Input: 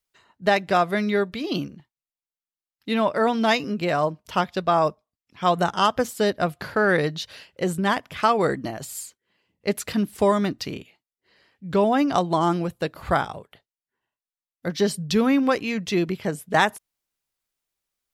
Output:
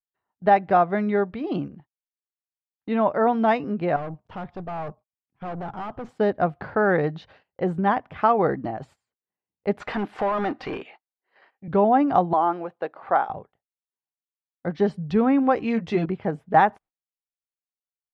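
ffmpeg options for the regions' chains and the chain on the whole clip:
-filter_complex "[0:a]asettb=1/sr,asplit=3[s0][s1][s2];[s0]atrim=end=3.964[s3];[s1]atrim=start=3.96:end=6.09,asetpts=PTS-STARTPTS,afade=t=in:d=0.004:c=qsin,afade=t=out:st=2.126:d=0.004:c=qsin,equalizer=f=130:t=o:w=0.83:g=7.5,aeval=exprs='(tanh(35.5*val(0)+0.45)-tanh(0.45))/35.5':c=same[s4];[s2]atrim=start=6.086[s5];[s3][s4]acrossfade=d=0.004:c1=hsin:c2=qsin[s6];[s6][s5]acrossfade=d=0.004:c1=qsin:c2=hsin,asettb=1/sr,asplit=3[s7][s8][s9];[s7]atrim=end=9.804[s10];[s8]atrim=start=9.8:end=11.68,asetpts=PTS-STARTPTS,afade=t=in:d=0.004:c=qsin,afade=t=out:st=1.876:d=0.004:c=qsin,equalizer=f=76:w=0.38:g=-14,acompressor=threshold=0.0562:ratio=6:attack=3.2:release=140:knee=1:detection=peak,asplit=2[s11][s12];[s12]highpass=f=720:p=1,volume=15.8,asoftclip=type=tanh:threshold=0.133[s13];[s11][s13]amix=inputs=2:normalize=0,lowpass=f=5400:p=1,volume=0.501[s14];[s9]atrim=start=11.676[s15];[s10][s14]acrossfade=d=0.004:c1=hsin:c2=qsin[s16];[s16][s15]acrossfade=d=0.004:c1=qsin:c2=hsin,asettb=1/sr,asplit=3[s17][s18][s19];[s17]atrim=end=12.334[s20];[s18]atrim=start=12.33:end=13.3,asetpts=PTS-STARTPTS,afade=t=in:d=0.004:c=qsin,afade=t=out:st=0.966:d=0.004:c=qsin,highpass=440,highshelf=f=5900:g=-7.5[s21];[s19]atrim=start=13.296[s22];[s20][s21]acrossfade=d=0.004:c1=hsin:c2=qsin[s23];[s23][s22]acrossfade=d=0.004:c1=qsin:c2=hsin,asettb=1/sr,asplit=3[s24][s25][s26];[s24]atrim=end=15.564[s27];[s25]atrim=start=15.56:end=16.06,asetpts=PTS-STARTPTS,afade=t=in:d=0.004:c=qsin,afade=t=out:st=0.496:d=0.004:c=qsin,highshelf=f=4900:g=10.5,asplit=2[s28][s29];[s29]adelay=13,volume=0.668[s30];[s28][s30]amix=inputs=2:normalize=0,atrim=end_sample=22050[s31];[s26]atrim=start=16.056[s32];[s27][s31]acrossfade=d=0.004:c1=hsin:c2=qsin[s33];[s33][s32]acrossfade=d=0.004:c1=qsin:c2=hsin,lowpass=1500,agate=range=0.0794:threshold=0.00398:ratio=16:detection=peak,equalizer=f=780:w=6.4:g=8"

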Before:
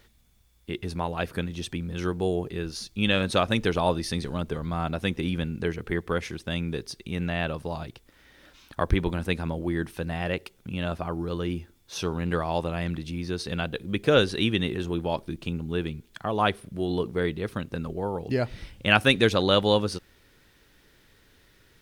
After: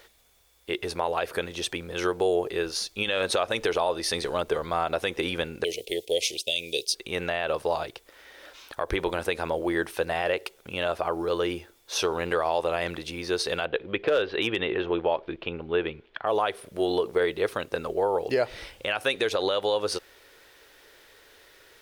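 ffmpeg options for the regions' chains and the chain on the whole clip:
-filter_complex "[0:a]asettb=1/sr,asplit=3[s0][s1][s2];[s0]atrim=end=5.644[s3];[s1]atrim=start=5.64:end=6.95,asetpts=PTS-STARTPTS,afade=t=in:d=0.004:c=qsin,afade=t=out:st=1.306:d=0.004:c=qsin,agate=range=0.447:threshold=0.00631:ratio=16:release=100:detection=peak,asuperstop=centerf=1300:order=8:qfactor=0.63,tiltshelf=f=730:g=-10[s4];[s2]atrim=start=6.946[s5];[s3][s4]acrossfade=d=0.004:c1=hsin:c2=qsin[s6];[s6][s5]acrossfade=d=0.004:c1=qsin:c2=hsin,asettb=1/sr,asplit=3[s7][s8][s9];[s7]atrim=end=13.654[s10];[s8]atrim=start=13.65:end=16.27,asetpts=PTS-STARTPTS,afade=t=in:d=0.004:c=qsin,afade=t=out:st=2.616:d=0.004:c=qsin,lowpass=f=3200:w=0.5412,lowpass=f=3200:w=1.3066,aeval=exprs='clip(val(0),-1,0.178)':c=same[s11];[s9]atrim=start=16.266[s12];[s10][s11]acrossfade=d=0.004:c1=hsin:c2=qsin[s13];[s13][s12]acrossfade=d=0.004:c1=qsin:c2=hsin,lowshelf=f=310:t=q:w=1.5:g=-14,acompressor=threshold=0.0562:ratio=4,alimiter=limit=0.0944:level=0:latency=1:release=50,volume=2.11"

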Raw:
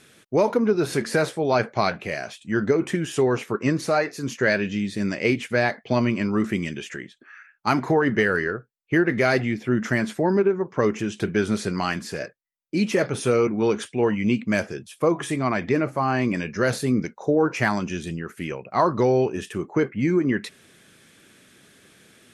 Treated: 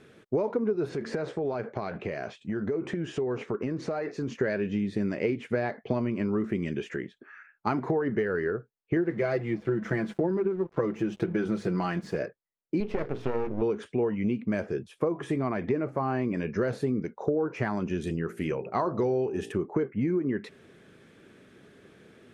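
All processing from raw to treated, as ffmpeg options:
-filter_complex "[0:a]asettb=1/sr,asplit=3[s0][s1][s2];[s0]atrim=end=0.894[s3];[s1]atrim=start=0.89:end=4.35,asetpts=PTS-STARTPTS,afade=t=in:d=0.004:c=qsin,afade=t=out:st=3.456:d=0.004:c=qsin,lowpass=f=8000:w=0.5412,lowpass=f=8000:w=1.3066,acompressor=threshold=0.0398:ratio=8:attack=3.2:release=140:knee=1:detection=peak,aeval=exprs='clip(val(0),-1,0.0501)':c=same[s4];[s2]atrim=start=4.346[s5];[s3][s4]acrossfade=d=0.004:c1=hsin:c2=qsin[s6];[s6][s5]acrossfade=d=0.004:c1=qsin:c2=hsin,asettb=1/sr,asplit=3[s7][s8][s9];[s7]atrim=end=8.964[s10];[s8]atrim=start=8.96:end=12.15,asetpts=PTS-STARTPTS,afade=t=in:d=0.004:c=qsin,afade=t=out:st=3.186:d=0.004:c=qsin,bandreject=f=50:t=h:w=6,bandreject=f=100:t=h:w=6,bandreject=f=150:t=h:w=6,bandreject=f=200:t=h:w=6,bandreject=f=250:t=h:w=6,aecho=1:1:6:0.66,atrim=end_sample=140679,aeval=exprs='sgn(val(0))*max(abs(val(0))-0.00668,0)':c=same[s11];[s9]atrim=start=12.146[s12];[s10][s11]acrossfade=d=0.004:c1=hsin:c2=qsin[s13];[s13][s12]acrossfade=d=0.004:c1=qsin:c2=hsin,asettb=1/sr,asplit=3[s14][s15][s16];[s14]atrim=end=12.804[s17];[s15]atrim=start=12.8:end=13.62,asetpts=PTS-STARTPTS,afade=t=in:d=0.004:c=qsin,afade=t=out:st=0.816:d=0.004:c=qsin,lowpass=f=5100:w=0.5412,lowpass=f=5100:w=1.3066,aeval=exprs='max(val(0),0)':c=same,bandreject=f=60:t=h:w=6,bandreject=f=120:t=h:w=6,bandreject=f=180:t=h:w=6,bandreject=f=240:t=h:w=6,bandreject=f=300:t=h:w=6,bandreject=f=360:t=h:w=6,bandreject=f=420:t=h:w=6,bandreject=f=480:t=h:w=6[s18];[s16]atrim=start=13.616[s19];[s17][s18]acrossfade=d=0.004:c1=hsin:c2=qsin[s20];[s20][s19]acrossfade=d=0.004:c1=qsin:c2=hsin,asettb=1/sr,asplit=3[s21][s22][s23];[s21]atrim=end=18.014[s24];[s22]atrim=start=18.01:end=19.52,asetpts=PTS-STARTPTS,afade=t=in:d=0.004:c=qsin,afade=t=out:st=1.506:d=0.004:c=qsin,aemphasis=mode=production:type=50kf,bandreject=f=56.65:t=h:w=4,bandreject=f=113.3:t=h:w=4,bandreject=f=169.95:t=h:w=4,bandreject=f=226.6:t=h:w=4,bandreject=f=283.25:t=h:w=4,bandreject=f=339.9:t=h:w=4,bandreject=f=396.55:t=h:w=4,bandreject=f=453.2:t=h:w=4,bandreject=f=509.85:t=h:w=4,bandreject=f=566.5:t=h:w=4,bandreject=f=623.15:t=h:w=4,bandreject=f=679.8:t=h:w=4,bandreject=f=736.45:t=h:w=4,bandreject=f=793.1:t=h:w=4,bandreject=f=849.75:t=h:w=4,bandreject=f=906.4:t=h:w=4[s25];[s23]atrim=start=19.516[s26];[s24][s25]acrossfade=d=0.004:c1=hsin:c2=qsin[s27];[s27][s26]acrossfade=d=0.004:c1=qsin:c2=hsin,lowpass=f=1100:p=1,equalizer=f=420:w=3:g=5,acompressor=threshold=0.0501:ratio=6,volume=1.19"

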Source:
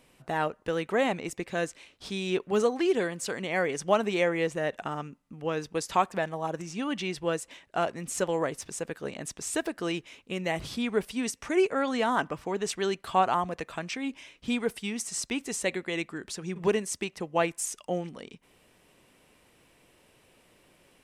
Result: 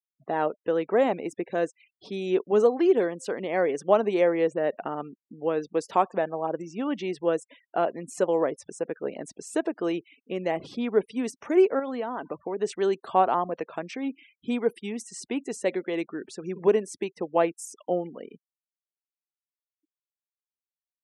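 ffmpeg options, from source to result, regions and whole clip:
-filter_complex "[0:a]asettb=1/sr,asplit=3[s0][s1][s2];[s0]atrim=end=11.794[s3];[s1]atrim=start=11.79:end=12.61,asetpts=PTS-STARTPTS,afade=t=in:d=0.004:c=qsin,afade=t=out:st=0.816:d=0.004:c=qsin,equalizer=f=5000:t=o:w=0.39:g=-2.5,acompressor=threshold=0.0282:ratio=4:attack=3.2:release=140:knee=1:detection=peak[s4];[s2]atrim=start=12.606[s5];[s3][s4]acrossfade=d=0.004:c1=hsin:c2=qsin[s6];[s6][s5]acrossfade=d=0.004:c1=qsin:c2=hsin,afftfilt=real='re*gte(hypot(re,im),0.00708)':imag='im*gte(hypot(re,im),0.00708)':win_size=1024:overlap=0.75,highpass=360,tiltshelf=f=940:g=9,volume=1.19"

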